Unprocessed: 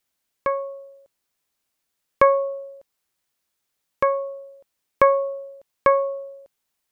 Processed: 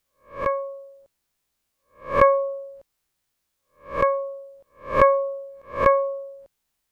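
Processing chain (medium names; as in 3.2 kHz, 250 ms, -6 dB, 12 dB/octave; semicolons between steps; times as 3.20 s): reverse spectral sustain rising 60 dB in 0.36 s; bass shelf 110 Hz +11 dB; trim -1 dB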